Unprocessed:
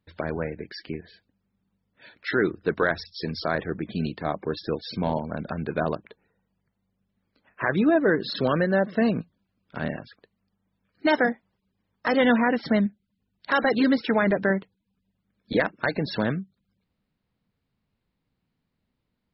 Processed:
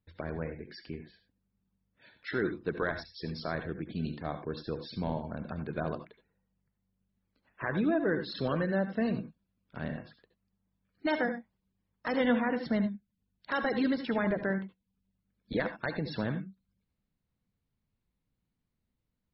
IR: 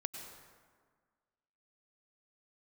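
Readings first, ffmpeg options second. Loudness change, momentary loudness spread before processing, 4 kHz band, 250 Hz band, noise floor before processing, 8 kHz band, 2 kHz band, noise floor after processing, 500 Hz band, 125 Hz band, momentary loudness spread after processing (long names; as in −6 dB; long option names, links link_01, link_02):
−8.0 dB, 13 LU, −9.0 dB, −7.0 dB, −79 dBFS, can't be measured, −9.0 dB, −83 dBFS, −8.5 dB, −5.5 dB, 13 LU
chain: -filter_complex "[0:a]lowshelf=frequency=120:gain=9.5[link_01];[1:a]atrim=start_sample=2205,atrim=end_sample=6174,asetrate=61740,aresample=44100[link_02];[link_01][link_02]afir=irnorm=-1:irlink=0,volume=-4.5dB"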